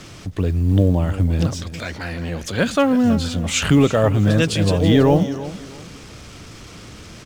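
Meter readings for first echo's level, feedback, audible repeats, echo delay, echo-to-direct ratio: -15.0 dB, 27%, 2, 327 ms, -14.5 dB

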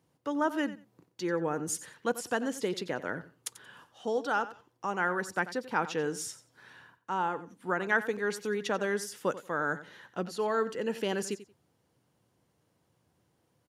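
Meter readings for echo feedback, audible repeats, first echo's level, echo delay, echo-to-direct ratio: 18%, 2, -15.0 dB, 90 ms, -15.0 dB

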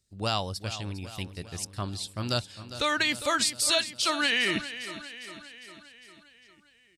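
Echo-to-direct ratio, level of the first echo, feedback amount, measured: -11.0 dB, -13.0 dB, 58%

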